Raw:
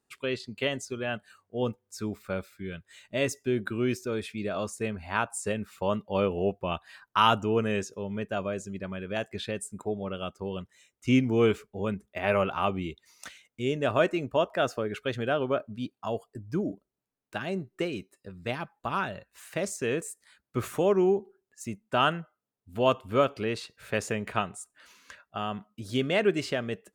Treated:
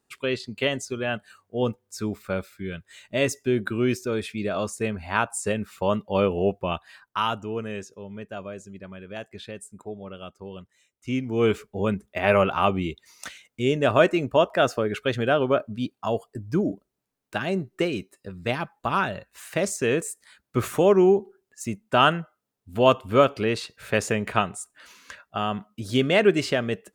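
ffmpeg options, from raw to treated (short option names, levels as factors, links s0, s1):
-af "volume=5.62,afade=t=out:st=6.59:d=0.69:silence=0.354813,afade=t=in:st=11.26:d=0.41:silence=0.298538"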